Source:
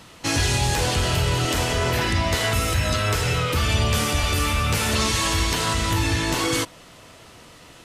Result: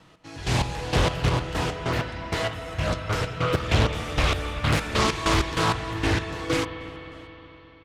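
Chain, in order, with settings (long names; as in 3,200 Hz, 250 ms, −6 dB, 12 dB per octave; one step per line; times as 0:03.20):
fade-out on the ending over 2.59 s
noise gate with hold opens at −47 dBFS
low-pass filter 2,600 Hz 6 dB per octave
comb filter 6.3 ms, depth 38%
automatic gain control gain up to 16.5 dB
gate pattern "x..x..x.x.x." 97 BPM −12 dB
0:01.29–0:03.54: flanger 1 Hz, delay 9.7 ms, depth 2.3 ms, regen −60%
spring reverb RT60 4 s, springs 44/52 ms, chirp 45 ms, DRR 8.5 dB
highs frequency-modulated by the lows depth 0.69 ms
level −7.5 dB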